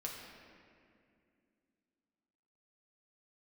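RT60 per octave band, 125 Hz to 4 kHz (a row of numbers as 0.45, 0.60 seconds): 2.8, 3.5, 2.7, 2.1, 2.2, 1.5 seconds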